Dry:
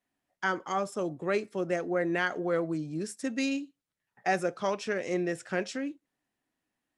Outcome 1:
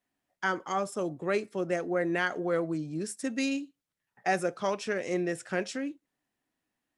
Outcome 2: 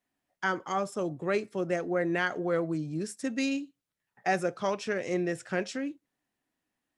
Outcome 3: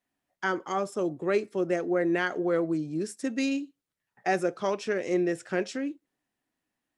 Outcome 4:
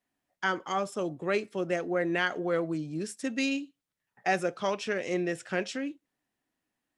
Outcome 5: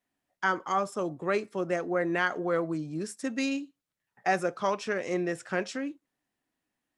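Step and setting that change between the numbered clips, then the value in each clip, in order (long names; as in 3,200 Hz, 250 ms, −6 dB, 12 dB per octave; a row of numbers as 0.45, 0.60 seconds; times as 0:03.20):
dynamic equaliser, frequency: 9,700, 120, 360, 3,000, 1,100 Hertz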